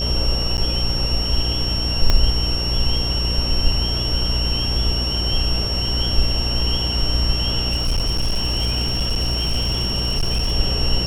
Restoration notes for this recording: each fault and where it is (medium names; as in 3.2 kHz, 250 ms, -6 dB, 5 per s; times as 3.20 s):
buzz 60 Hz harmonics 12 -24 dBFS
whine 5.5 kHz -23 dBFS
0.57–0.58 s: dropout 9.8 ms
2.10 s: pop -3 dBFS
7.71–10.53 s: clipped -15.5 dBFS